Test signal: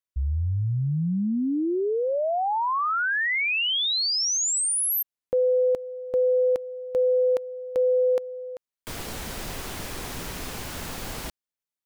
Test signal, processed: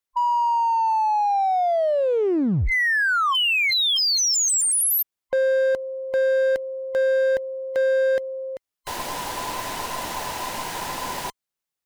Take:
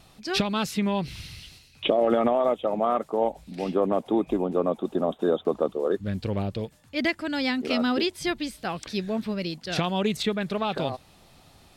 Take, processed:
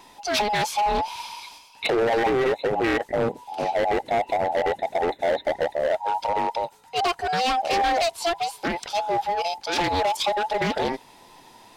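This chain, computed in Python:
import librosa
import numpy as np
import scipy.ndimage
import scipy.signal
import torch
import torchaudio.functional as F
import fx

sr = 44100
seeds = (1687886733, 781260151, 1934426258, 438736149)

y = fx.band_invert(x, sr, width_hz=1000)
y = np.clip(10.0 ** (22.5 / 20.0) * y, -1.0, 1.0) / 10.0 ** (22.5 / 20.0)
y = fx.doppler_dist(y, sr, depth_ms=0.23)
y = F.gain(torch.from_numpy(y), 4.5).numpy()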